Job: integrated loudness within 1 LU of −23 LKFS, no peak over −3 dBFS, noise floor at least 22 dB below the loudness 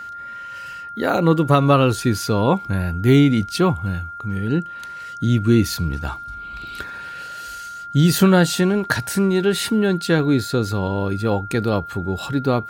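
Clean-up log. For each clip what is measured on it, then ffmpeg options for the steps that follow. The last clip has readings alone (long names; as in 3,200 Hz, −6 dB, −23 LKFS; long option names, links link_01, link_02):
interfering tone 1,400 Hz; level of the tone −31 dBFS; integrated loudness −19.0 LKFS; sample peak −2.0 dBFS; target loudness −23.0 LKFS
→ -af "bandreject=frequency=1400:width=30"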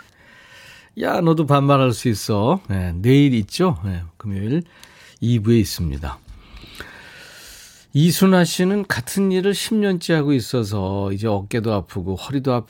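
interfering tone none found; integrated loudness −19.5 LKFS; sample peak −2.5 dBFS; target loudness −23.0 LKFS
→ -af "volume=-3.5dB"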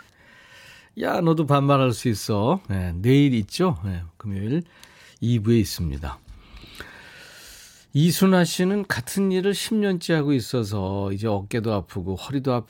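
integrated loudness −23.0 LKFS; sample peak −6.0 dBFS; background noise floor −54 dBFS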